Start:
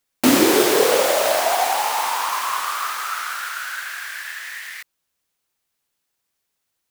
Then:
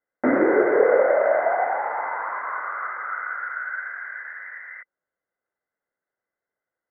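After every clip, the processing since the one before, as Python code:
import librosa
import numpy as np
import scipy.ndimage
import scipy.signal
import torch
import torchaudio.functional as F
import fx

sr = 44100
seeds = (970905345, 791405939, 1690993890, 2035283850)

y = scipy.signal.sosfilt(scipy.signal.cheby1(6, 9, 2100.0, 'lowpass', fs=sr, output='sos'), x)
y = fx.low_shelf(y, sr, hz=140.0, db=-8.0)
y = y * 10.0 ** (2.5 / 20.0)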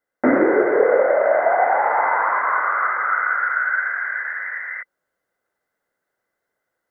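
y = fx.rider(x, sr, range_db=4, speed_s=0.5)
y = y * 10.0 ** (5.5 / 20.0)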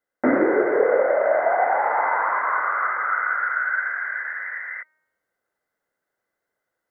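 y = fx.comb_fb(x, sr, f0_hz=310.0, decay_s=1.0, harmonics='all', damping=0.0, mix_pct=40)
y = y * 10.0 ** (1.5 / 20.0)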